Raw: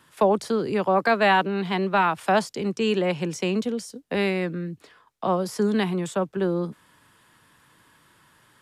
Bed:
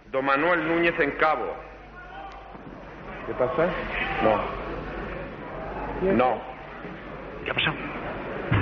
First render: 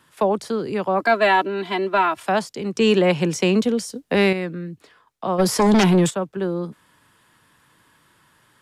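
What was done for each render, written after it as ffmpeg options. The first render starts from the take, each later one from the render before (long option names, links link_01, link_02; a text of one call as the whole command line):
ffmpeg -i in.wav -filter_complex "[0:a]asettb=1/sr,asplit=3[link_01][link_02][link_03];[link_01]atrim=end=1.004[link_04];[link_02]atrim=start=1:end=2.23,asetpts=PTS-STARTPTS,afade=type=in:duration=0.004:curve=qsin,afade=type=out:start_time=1.226:duration=0.004:curve=qsin,aecho=1:1:3:0.78,atrim=end_sample=54243[link_05];[link_03]atrim=start=2.226[link_06];[link_04][link_05]acrossfade=duration=0.004:curve1=hsin:curve2=qsin[link_07];[link_07][link_06]acrossfade=duration=0.004:curve1=qsin:curve2=hsin,asettb=1/sr,asplit=3[link_08][link_09][link_10];[link_08]atrim=end=2.754[link_11];[link_09]atrim=start=2.75:end=4.33,asetpts=PTS-STARTPTS,afade=type=in:duration=0.004:curve=qsin,afade=type=out:start_time=1.576:duration=0.004:curve=qsin,acontrast=77[link_12];[link_10]atrim=start=4.326[link_13];[link_11][link_12]acrossfade=duration=0.004:curve1=hsin:curve2=qsin[link_14];[link_14][link_13]acrossfade=duration=0.004:curve1=qsin:curve2=hsin,asplit=3[link_15][link_16][link_17];[link_15]afade=type=out:start_time=5.38:duration=0.02[link_18];[link_16]aeval=exprs='0.282*sin(PI/2*2.82*val(0)/0.282)':channel_layout=same,afade=type=in:start_time=5.38:duration=0.02,afade=type=out:start_time=6.09:duration=0.02[link_19];[link_17]afade=type=in:start_time=6.09:duration=0.02[link_20];[link_18][link_19][link_20]amix=inputs=3:normalize=0" out.wav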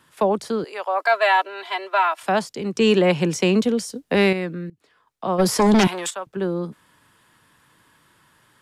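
ffmpeg -i in.wav -filter_complex "[0:a]asettb=1/sr,asplit=3[link_01][link_02][link_03];[link_01]atrim=end=0.644[link_04];[link_02]atrim=start=0.64:end=2.23,asetpts=PTS-STARTPTS,afade=type=in:duration=0.004:curve=qsin,afade=type=out:start_time=1.586:duration=0.004:curve=qsin,highpass=frequency=560:width=0.5412,highpass=frequency=560:width=1.3066[link_05];[link_03]atrim=start=2.226[link_06];[link_04][link_05]acrossfade=duration=0.004:curve1=hsin:curve2=qsin[link_07];[link_07][link_06]acrossfade=duration=0.004:curve1=qsin:curve2=hsin,asettb=1/sr,asplit=3[link_08][link_09][link_10];[link_08]atrim=end=5.874[link_11];[link_09]atrim=start=5.87:end=6.27,asetpts=PTS-STARTPTS,afade=type=in:duration=0.004:curve=qsin,afade=type=out:start_time=0.396:duration=0.004:curve=qsin,highpass=800[link_12];[link_10]atrim=start=6.266[link_13];[link_11][link_12]acrossfade=duration=0.004:curve1=hsin:curve2=qsin[link_14];[link_14][link_13]acrossfade=duration=0.004:curve1=qsin:curve2=hsin,asplit=2[link_15][link_16];[link_15]atrim=end=4.7,asetpts=PTS-STARTPTS,afade=type=out:start_time=4.696:duration=0.004:curve=hsin:silence=0.1[link_17];[link_16]atrim=start=4.7,asetpts=PTS-STARTPTS,afade=type=in:duration=0.6:silence=0.1[link_18];[link_17][link_18]concat=n=2:v=0:a=1" out.wav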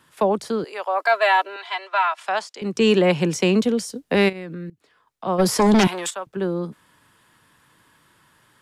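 ffmpeg -i in.wav -filter_complex "[0:a]asettb=1/sr,asplit=3[link_01][link_02][link_03];[link_01]atrim=end=1.564[link_04];[link_02]atrim=start=1.56:end=2.62,asetpts=PTS-STARTPTS,afade=type=in:duration=0.004:curve=qsin,afade=type=out:start_time=1.056:duration=0.004:curve=qsin,highpass=710,lowpass=7600[link_05];[link_03]atrim=start=2.616[link_06];[link_04][link_05]acrossfade=duration=0.004:curve1=hsin:curve2=qsin[link_07];[link_07][link_06]acrossfade=duration=0.004:curve1=qsin:curve2=hsin,asplit=3[link_08][link_09][link_10];[link_08]afade=type=out:start_time=4.28:duration=0.02[link_11];[link_09]acompressor=threshold=-28dB:ratio=12:attack=3.2:release=140:knee=1:detection=peak,afade=type=in:start_time=4.28:duration=0.02,afade=type=out:start_time=5.25:duration=0.02[link_12];[link_10]afade=type=in:start_time=5.25:duration=0.02[link_13];[link_11][link_12][link_13]amix=inputs=3:normalize=0" out.wav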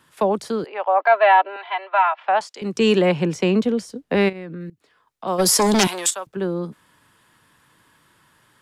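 ffmpeg -i in.wav -filter_complex "[0:a]asettb=1/sr,asplit=3[link_01][link_02][link_03];[link_01]atrim=end=0.664[link_04];[link_02]atrim=start=0.66:end=2.41,asetpts=PTS-STARTPTS,afade=type=in:duration=0.004:curve=qsin,afade=type=out:start_time=1.746:duration=0.004:curve=qsin,highpass=190,equalizer=frequency=230:width_type=q:width=4:gain=4,equalizer=frequency=580:width_type=q:width=4:gain=4,equalizer=frequency=820:width_type=q:width=4:gain=8,lowpass=frequency=3000:width=0.5412,lowpass=frequency=3000:width=1.3066[link_05];[link_03]atrim=start=2.406[link_06];[link_04][link_05]acrossfade=duration=0.004:curve1=hsin:curve2=qsin[link_07];[link_07][link_06]acrossfade=duration=0.004:curve1=qsin:curve2=hsin,asettb=1/sr,asplit=3[link_08][link_09][link_10];[link_08]atrim=end=3.094[link_11];[link_09]atrim=start=3.09:end=4.61,asetpts=PTS-STARTPTS,afade=type=in:duration=0.004:curve=qsin,afade=type=out:start_time=1.516:duration=0.004:curve=qsin,highshelf=frequency=4300:gain=-10.5[link_12];[link_10]atrim=start=4.606[link_13];[link_11][link_12]acrossfade=duration=0.004:curve1=hsin:curve2=qsin[link_14];[link_14][link_13]acrossfade=duration=0.004:curve1=qsin:curve2=hsin,asettb=1/sr,asplit=3[link_15][link_16][link_17];[link_15]atrim=end=5.274[link_18];[link_16]atrim=start=5.27:end=6.27,asetpts=PTS-STARTPTS,afade=type=in:duration=0.004:curve=qsin,afade=type=out:start_time=0.996:duration=0.004:curve=qsin,bass=frequency=250:gain=-5,treble=frequency=4000:gain=10[link_19];[link_17]atrim=start=6.266[link_20];[link_18][link_19]acrossfade=duration=0.004:curve1=hsin:curve2=qsin[link_21];[link_21][link_20]acrossfade=duration=0.004:curve1=qsin:curve2=hsin" out.wav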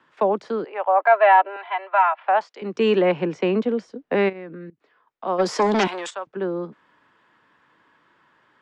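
ffmpeg -i in.wav -filter_complex "[0:a]lowpass=frequency=6600:width=0.5412,lowpass=frequency=6600:width=1.3066,acrossover=split=220 2700:gain=0.2 1 0.2[link_01][link_02][link_03];[link_01][link_02][link_03]amix=inputs=3:normalize=0" out.wav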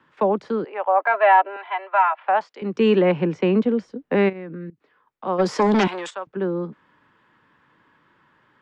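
ffmpeg -i in.wav -af "bass=frequency=250:gain=7,treble=frequency=4000:gain=-4,bandreject=frequency=680:width=12" out.wav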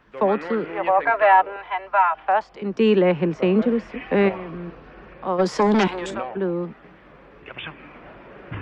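ffmpeg -i in.wav -i bed.wav -filter_complex "[1:a]volume=-10.5dB[link_01];[0:a][link_01]amix=inputs=2:normalize=0" out.wav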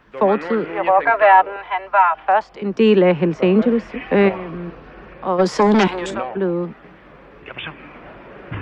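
ffmpeg -i in.wav -af "volume=4dB,alimiter=limit=-1dB:level=0:latency=1" out.wav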